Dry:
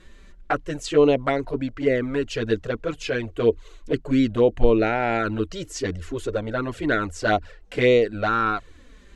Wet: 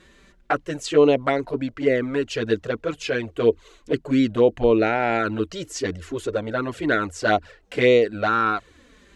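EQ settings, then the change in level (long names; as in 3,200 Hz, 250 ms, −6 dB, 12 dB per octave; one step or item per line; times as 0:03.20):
high-pass filter 130 Hz 6 dB per octave
+1.5 dB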